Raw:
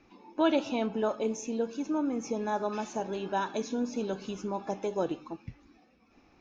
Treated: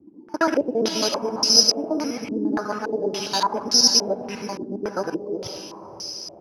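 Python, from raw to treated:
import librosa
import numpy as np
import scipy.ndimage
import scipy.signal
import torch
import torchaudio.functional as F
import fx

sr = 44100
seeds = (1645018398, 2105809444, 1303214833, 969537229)

p1 = fx.local_reverse(x, sr, ms=68.0)
p2 = (np.kron(p1[::8], np.eye(8)[0]) * 8)[:len(p1)]
p3 = scipy.signal.sosfilt(scipy.signal.butter(2, 87.0, 'highpass', fs=sr, output='sos'), p2)
p4 = p3 + fx.echo_diffused(p3, sr, ms=503, feedback_pct=42, wet_db=-8.5, dry=0)
p5 = fx.filter_held_lowpass(p4, sr, hz=3.5, low_hz=310.0, high_hz=5000.0)
y = F.gain(torch.from_numpy(p5), 2.5).numpy()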